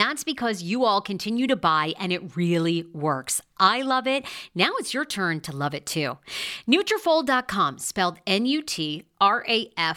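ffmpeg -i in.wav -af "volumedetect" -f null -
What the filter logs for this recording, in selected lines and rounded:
mean_volume: -24.5 dB
max_volume: -4.5 dB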